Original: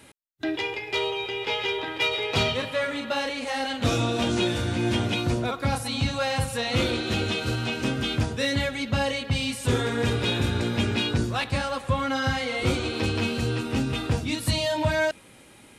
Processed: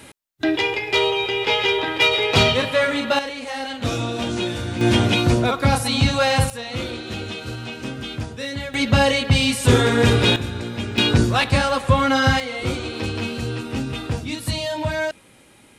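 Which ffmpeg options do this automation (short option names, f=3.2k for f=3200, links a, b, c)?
-af "asetnsamples=n=441:p=0,asendcmd='3.19 volume volume 0dB;4.81 volume volume 8dB;6.5 volume volume -3.5dB;8.74 volume volume 9dB;10.36 volume volume -2.5dB;10.98 volume volume 8.5dB;12.4 volume volume 0dB',volume=8dB"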